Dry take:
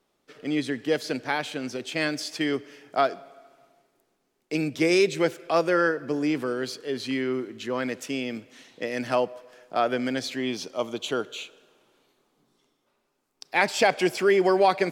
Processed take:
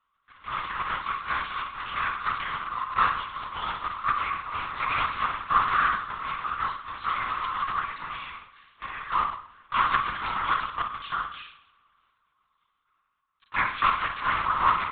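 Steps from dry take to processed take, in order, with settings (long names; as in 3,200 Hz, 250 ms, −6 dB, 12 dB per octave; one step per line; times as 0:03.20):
sub-harmonics by changed cycles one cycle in 3, inverted
delay with pitch and tempo change per echo 152 ms, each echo +6 semitones, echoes 3, each echo −6 dB
four-pole ladder high-pass 1,100 Hz, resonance 80%
on a send: flutter between parallel walls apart 9.2 metres, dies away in 0.57 s
on the sum: linear-prediction vocoder at 8 kHz whisper
level +4.5 dB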